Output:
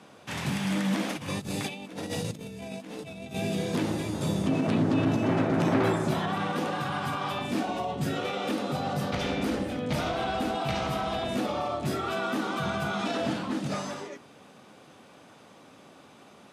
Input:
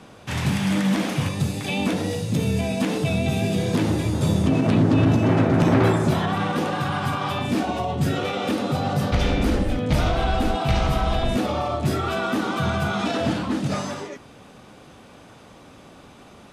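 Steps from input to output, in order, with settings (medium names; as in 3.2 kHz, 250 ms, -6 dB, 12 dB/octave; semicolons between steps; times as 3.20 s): high-pass 150 Hz 12 dB/octave; hum notches 60/120/180/240/300/360/420/480 Hz; 1.10–3.36 s: compressor with a negative ratio -30 dBFS, ratio -0.5; trim -5 dB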